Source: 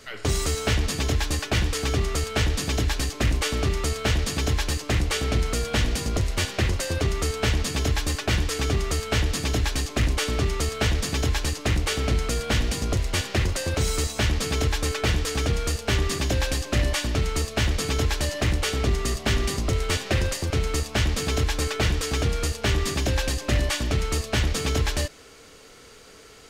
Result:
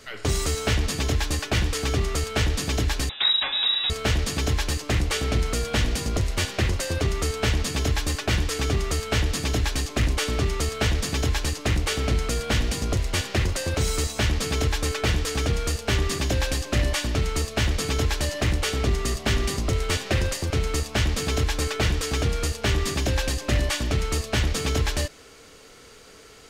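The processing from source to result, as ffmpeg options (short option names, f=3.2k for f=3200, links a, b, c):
-filter_complex "[0:a]asettb=1/sr,asplit=3[a][b][c];[a]atrim=end=3.094[d];[b]atrim=start=3.09:end=3.9,asetpts=PTS-STARTPTS,afade=t=in:d=0.004:c=qsin,afade=t=out:st=0.806:d=0.004:c=qsin,lowpass=f=3.3k:t=q:w=0.5098,lowpass=f=3.3k:t=q:w=0.6013,lowpass=f=3.3k:t=q:w=0.9,lowpass=f=3.3k:t=q:w=2.563,afreqshift=-3900[e];[c]atrim=start=3.896[f];[d][e]acrossfade=d=0.004:c1=hsin:c2=qsin[g];[g][f]acrossfade=d=0.004:c1=qsin:c2=hsin"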